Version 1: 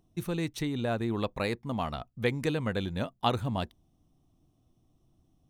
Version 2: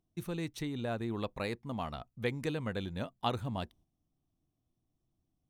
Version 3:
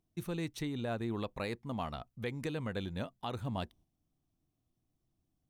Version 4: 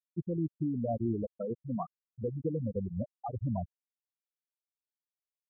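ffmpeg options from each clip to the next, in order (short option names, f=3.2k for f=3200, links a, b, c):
-af "agate=range=-8dB:threshold=-55dB:ratio=16:detection=peak,volume=-5.5dB"
-af "alimiter=level_in=1.5dB:limit=-24dB:level=0:latency=1:release=130,volume=-1.5dB"
-af "afftfilt=real='re*gte(hypot(re,im),0.0708)':imag='im*gte(hypot(re,im),0.0708)':win_size=1024:overlap=0.75,volume=6dB"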